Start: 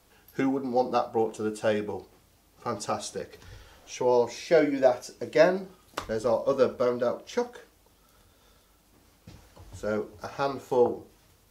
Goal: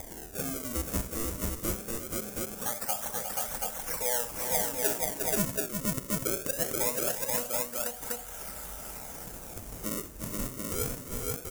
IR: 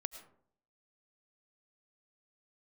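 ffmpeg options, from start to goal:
-af "aphaser=in_gain=1:out_gain=1:delay=1.7:decay=0.36:speed=1.6:type=triangular,acompressor=mode=upward:threshold=-32dB:ratio=2.5,aresample=16000,acrusher=bits=4:mode=log:mix=0:aa=0.000001,aresample=44100,equalizer=frequency=89:width_type=o:width=1.5:gain=-15,aecho=1:1:1.4:0.87,acrusher=samples=31:mix=1:aa=0.000001:lfo=1:lforange=49.6:lforate=0.22,aecho=1:1:64|353|481|731:0.2|0.266|0.668|0.596,acompressor=threshold=-38dB:ratio=2,aexciter=amount=6.7:drive=2.7:freq=5800,volume=-1.5dB"

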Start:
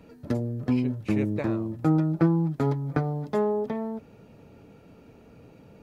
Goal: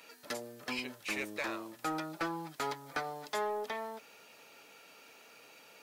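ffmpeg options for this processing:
ffmpeg -i in.wav -filter_complex "[0:a]aderivative,asplit=2[link_01][link_02];[link_02]highpass=frequency=720:poles=1,volume=18dB,asoftclip=type=tanh:threshold=-30dB[link_03];[link_01][link_03]amix=inputs=2:normalize=0,lowpass=frequency=3300:poles=1,volume=-6dB,volume=7dB" out.wav

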